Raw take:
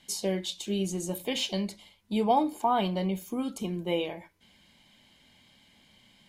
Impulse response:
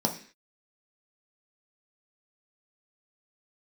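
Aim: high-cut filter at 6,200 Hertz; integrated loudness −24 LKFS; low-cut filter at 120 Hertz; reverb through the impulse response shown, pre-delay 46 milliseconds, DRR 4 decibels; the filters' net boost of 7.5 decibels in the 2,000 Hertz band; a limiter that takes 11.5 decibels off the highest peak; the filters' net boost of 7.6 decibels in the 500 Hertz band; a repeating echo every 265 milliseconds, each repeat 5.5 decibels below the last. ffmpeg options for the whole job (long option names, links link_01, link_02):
-filter_complex "[0:a]highpass=120,lowpass=6200,equalizer=frequency=500:width_type=o:gain=9,equalizer=frequency=2000:width_type=o:gain=9,alimiter=limit=-18.5dB:level=0:latency=1,aecho=1:1:265|530|795|1060|1325|1590|1855:0.531|0.281|0.149|0.079|0.0419|0.0222|0.0118,asplit=2[link_01][link_02];[1:a]atrim=start_sample=2205,adelay=46[link_03];[link_02][link_03]afir=irnorm=-1:irlink=0,volume=-13dB[link_04];[link_01][link_04]amix=inputs=2:normalize=0,volume=1dB"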